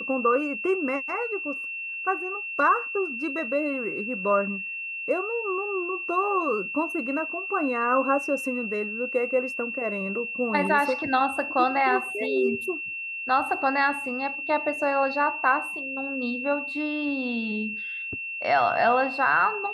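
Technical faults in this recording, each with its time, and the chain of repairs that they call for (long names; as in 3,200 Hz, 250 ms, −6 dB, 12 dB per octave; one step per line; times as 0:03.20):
whistle 2,700 Hz −31 dBFS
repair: notch filter 2,700 Hz, Q 30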